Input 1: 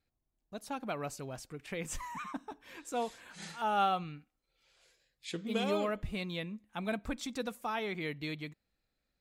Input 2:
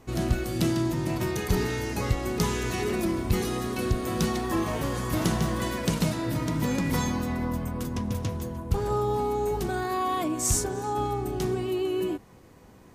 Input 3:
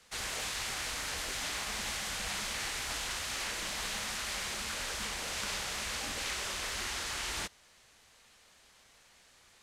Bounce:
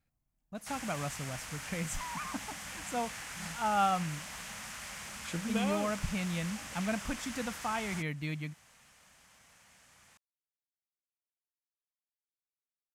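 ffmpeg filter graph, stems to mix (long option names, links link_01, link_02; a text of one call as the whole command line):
ffmpeg -i stem1.wav -i stem2.wav -i stem3.wav -filter_complex "[0:a]volume=2dB[link_01];[2:a]acrusher=bits=8:mode=log:mix=0:aa=0.000001,highpass=51,acompressor=threshold=-47dB:ratio=2,adelay=550,volume=2dB[link_02];[link_01][link_02]amix=inputs=2:normalize=0,equalizer=frequency=160:width_type=o:width=0.67:gain=6,equalizer=frequency=400:width_type=o:width=0.67:gain=-9,equalizer=frequency=4000:width_type=o:width=0.67:gain=-8" out.wav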